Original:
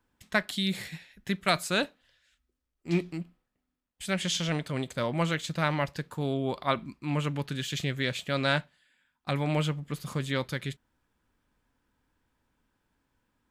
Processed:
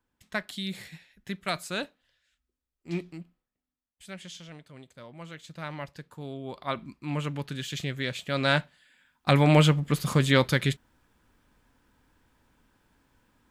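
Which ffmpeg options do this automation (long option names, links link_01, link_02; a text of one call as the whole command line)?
ffmpeg -i in.wav -af "volume=20.5dB,afade=type=out:start_time=2.97:duration=1.52:silence=0.266073,afade=type=in:start_time=5.19:duration=0.63:silence=0.398107,afade=type=in:start_time=6.43:duration=0.49:silence=0.446684,afade=type=in:start_time=8.22:duration=1.13:silence=0.298538" out.wav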